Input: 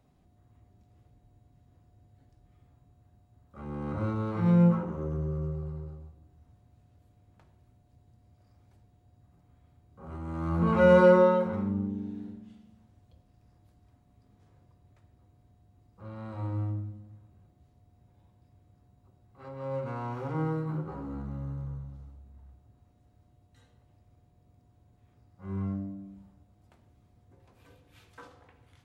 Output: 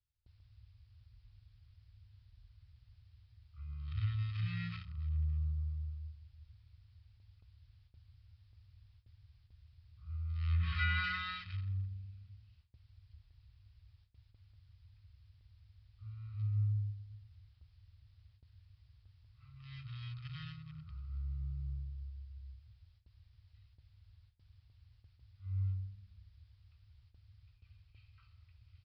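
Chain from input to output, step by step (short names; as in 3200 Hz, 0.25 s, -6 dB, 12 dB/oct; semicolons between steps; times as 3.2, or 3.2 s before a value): Wiener smoothing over 25 samples; inverse Chebyshev band-stop 250–730 Hz, stop band 60 dB; treble ducked by the level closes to 2300 Hz, closed at -30 dBFS; high shelf 3100 Hz +11.5 dB; comb 1.6 ms, depth 52%; added noise blue -70 dBFS; gate with hold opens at -53 dBFS; downsampling 11025 Hz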